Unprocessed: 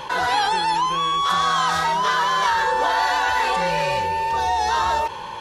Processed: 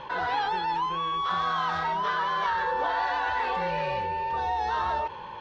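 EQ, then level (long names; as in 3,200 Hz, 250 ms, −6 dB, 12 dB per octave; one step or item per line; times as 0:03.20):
high-frequency loss of the air 250 metres
−6.0 dB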